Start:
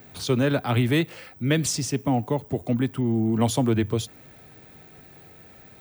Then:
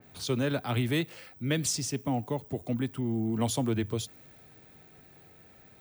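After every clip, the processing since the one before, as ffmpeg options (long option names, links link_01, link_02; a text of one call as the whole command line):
ffmpeg -i in.wav -af "adynamicequalizer=threshold=0.00794:dfrequency=3000:dqfactor=0.7:tfrequency=3000:tqfactor=0.7:attack=5:release=100:ratio=0.375:range=2:mode=boostabove:tftype=highshelf,volume=-7dB" out.wav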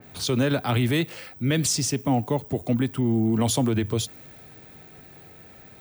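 ffmpeg -i in.wav -af "alimiter=limit=-22dB:level=0:latency=1:release=41,volume=8dB" out.wav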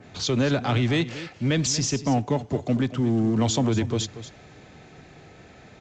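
ffmpeg -i in.wav -filter_complex "[0:a]asplit=2[link_01][link_02];[link_02]asoftclip=type=hard:threshold=-28.5dB,volume=-6dB[link_03];[link_01][link_03]amix=inputs=2:normalize=0,aecho=1:1:234:0.2,volume=-1.5dB" -ar 16000 -c:a pcm_alaw out.wav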